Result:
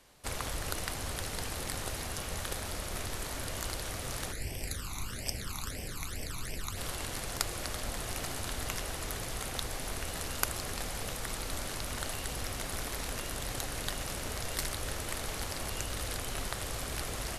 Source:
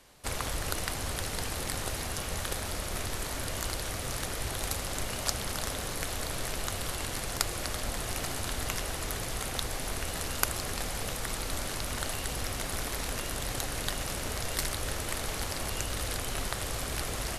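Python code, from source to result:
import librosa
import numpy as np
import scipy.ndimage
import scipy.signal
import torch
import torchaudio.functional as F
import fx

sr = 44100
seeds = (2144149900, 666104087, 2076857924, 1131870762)

y = fx.phaser_stages(x, sr, stages=12, low_hz=520.0, high_hz=1300.0, hz=fx.line((4.31, 0.93), (6.76, 3.9)), feedback_pct=25, at=(4.31, 6.76), fade=0.02)
y = y * librosa.db_to_amplitude(-3.0)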